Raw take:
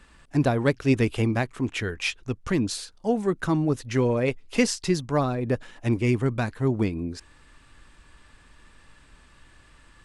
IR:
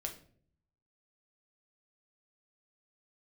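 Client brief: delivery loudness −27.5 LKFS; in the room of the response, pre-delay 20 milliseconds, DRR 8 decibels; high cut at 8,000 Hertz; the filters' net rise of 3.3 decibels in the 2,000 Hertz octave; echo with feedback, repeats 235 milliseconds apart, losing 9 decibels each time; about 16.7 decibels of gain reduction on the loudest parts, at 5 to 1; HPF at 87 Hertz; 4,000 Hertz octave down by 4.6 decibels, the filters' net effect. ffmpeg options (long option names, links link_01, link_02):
-filter_complex "[0:a]highpass=87,lowpass=8000,equalizer=frequency=2000:width_type=o:gain=6.5,equalizer=frequency=4000:width_type=o:gain=-8.5,acompressor=threshold=-36dB:ratio=5,aecho=1:1:235|470|705|940:0.355|0.124|0.0435|0.0152,asplit=2[link_01][link_02];[1:a]atrim=start_sample=2205,adelay=20[link_03];[link_02][link_03]afir=irnorm=-1:irlink=0,volume=-7dB[link_04];[link_01][link_04]amix=inputs=2:normalize=0,volume=10.5dB"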